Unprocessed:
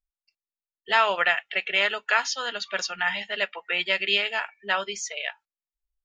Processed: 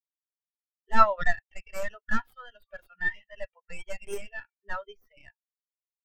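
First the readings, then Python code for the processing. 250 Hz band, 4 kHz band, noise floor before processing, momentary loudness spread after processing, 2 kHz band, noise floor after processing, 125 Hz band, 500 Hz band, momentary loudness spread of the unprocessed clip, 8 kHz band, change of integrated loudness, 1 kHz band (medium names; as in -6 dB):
+2.5 dB, -22.5 dB, under -85 dBFS, 24 LU, -9.5 dB, under -85 dBFS, no reading, -4.5 dB, 8 LU, -15.5 dB, -4.5 dB, -1.5 dB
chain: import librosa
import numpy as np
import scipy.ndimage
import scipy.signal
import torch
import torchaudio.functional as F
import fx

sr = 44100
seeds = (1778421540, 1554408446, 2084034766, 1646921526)

y = fx.tracing_dist(x, sr, depth_ms=0.4)
y = fx.wow_flutter(y, sr, seeds[0], rate_hz=2.1, depth_cents=22.0)
y = fx.spectral_expand(y, sr, expansion=2.5)
y = F.gain(torch.from_numpy(y), 2.5).numpy()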